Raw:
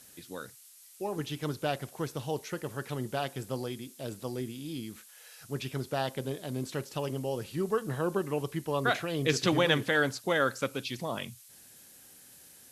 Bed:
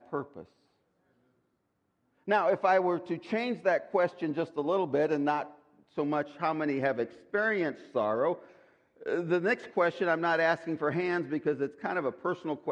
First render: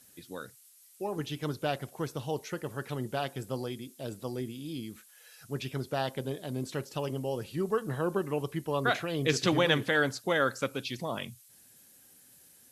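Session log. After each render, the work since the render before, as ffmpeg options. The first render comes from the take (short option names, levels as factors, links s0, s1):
-af "afftdn=nr=6:nf=-55"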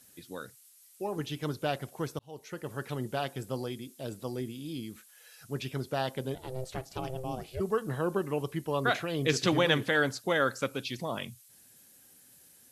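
-filter_complex "[0:a]asplit=3[s0][s1][s2];[s0]afade=t=out:st=6.34:d=0.02[s3];[s1]aeval=exprs='val(0)*sin(2*PI*260*n/s)':c=same,afade=t=in:st=6.34:d=0.02,afade=t=out:st=7.59:d=0.02[s4];[s2]afade=t=in:st=7.59:d=0.02[s5];[s3][s4][s5]amix=inputs=3:normalize=0,asplit=2[s6][s7];[s6]atrim=end=2.19,asetpts=PTS-STARTPTS,afade=t=out:st=2.186:d=0.004:c=hsin[s8];[s7]atrim=start=2.19,asetpts=PTS-STARTPTS,afade=t=in:d=0.56[s9];[s8][s9]concat=n=2:v=0:a=1"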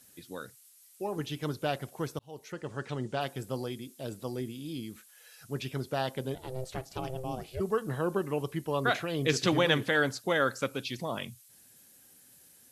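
-filter_complex "[0:a]asettb=1/sr,asplit=3[s0][s1][s2];[s0]atrim=end=2.524[s3];[s1]atrim=start=2.52:end=3.21,asetpts=PTS-STARTPTS,afade=t=in:d=0.004:c=qsin,afade=t=out:st=0.686:d=0.004:c=qsin,lowpass=f=8000:w=0.5412,lowpass=f=8000:w=1.3066[s4];[s2]atrim=start=3.206[s5];[s3][s4]acrossfade=d=0.004:c1=hsin:c2=qsin[s6];[s6][s5]acrossfade=d=0.004:c1=qsin:c2=hsin"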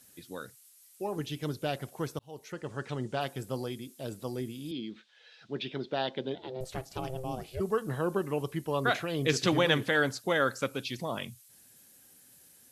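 -filter_complex "[0:a]asettb=1/sr,asplit=3[s0][s1][s2];[s0]atrim=end=1.194[s3];[s1]atrim=start=1.19:end=1.78,asetpts=PTS-STARTPTS,afade=t=in:d=0.004:c=qsin,afade=t=out:st=0.586:d=0.004:c=qsin,equalizer=f=1100:w=1.2:g=-5[s4];[s2]atrim=start=1.776[s5];[s3][s4]acrossfade=d=0.004:c1=hsin:c2=qsin[s6];[s6][s5]acrossfade=d=0.004:c1=qsin:c2=hsin,asettb=1/sr,asplit=3[s7][s8][s9];[s7]atrim=end=4.714[s10];[s8]atrim=start=4.71:end=6.61,asetpts=PTS-STARTPTS,afade=t=in:d=0.004:c=qsin,afade=t=out:st=1.896:d=0.004:c=qsin,highpass=200,equalizer=f=210:t=q:w=4:g=4,equalizer=f=350:t=q:w=4:g=4,equalizer=f=1200:t=q:w=4:g=-5,equalizer=f=3600:t=q:w=4:g=7,lowpass=f=4400:w=0.5412,lowpass=f=4400:w=1.3066[s11];[s9]atrim=start=6.606[s12];[s10][s11]acrossfade=d=0.004:c1=hsin:c2=qsin[s13];[s13][s12]acrossfade=d=0.004:c1=qsin:c2=hsin"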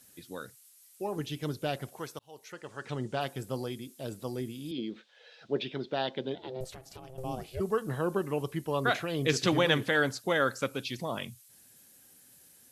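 -filter_complex "[0:a]asettb=1/sr,asplit=3[s0][s1][s2];[s0]atrim=end=1.994[s3];[s1]atrim=start=1.99:end=2.85,asetpts=PTS-STARTPTS,afade=t=in:d=0.004:c=qsin,afade=t=out:st=0.856:d=0.004:c=qsin,lowshelf=f=400:g=-11.5[s4];[s2]atrim=start=2.846[s5];[s3][s4]acrossfade=d=0.004:c1=hsin:c2=qsin[s6];[s6][s5]acrossfade=d=0.004:c1=qsin:c2=hsin,asettb=1/sr,asplit=3[s7][s8][s9];[s7]atrim=end=4.784[s10];[s8]atrim=start=4.78:end=5.64,asetpts=PTS-STARTPTS,afade=t=in:d=0.004:c=qsin,afade=t=out:st=0.856:d=0.004:c=qsin,equalizer=f=540:w=1.1:g=10[s11];[s9]atrim=start=5.636[s12];[s10][s11]acrossfade=d=0.004:c1=hsin:c2=qsin[s13];[s13][s12]acrossfade=d=0.004:c1=qsin:c2=hsin,asettb=1/sr,asplit=3[s14][s15][s16];[s14]atrim=end=6.734[s17];[s15]atrim=start=6.73:end=7.18,asetpts=PTS-STARTPTS,afade=t=in:d=0.004:c=qsin,afade=t=out:st=0.446:d=0.004:c=qsin,acompressor=threshold=0.00708:ratio=6:attack=3.2:release=140:knee=1:detection=peak[s18];[s16]atrim=start=7.176[s19];[s17][s18]acrossfade=d=0.004:c1=hsin:c2=qsin[s20];[s20][s19]acrossfade=d=0.004:c1=qsin:c2=hsin"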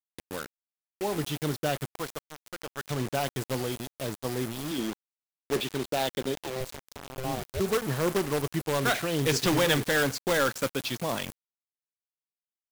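-filter_complex "[0:a]asplit=2[s0][s1];[s1]aeval=exprs='(mod(12.6*val(0)+1,2)-1)/12.6':c=same,volume=0.596[s2];[s0][s2]amix=inputs=2:normalize=0,acrusher=bits=5:mix=0:aa=0.000001"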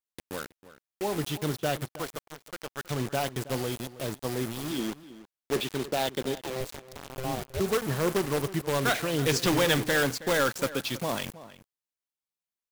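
-filter_complex "[0:a]asplit=2[s0][s1];[s1]adelay=320.7,volume=0.158,highshelf=f=4000:g=-7.22[s2];[s0][s2]amix=inputs=2:normalize=0"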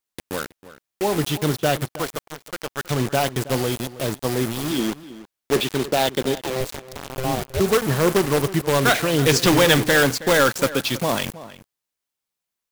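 -af "volume=2.66"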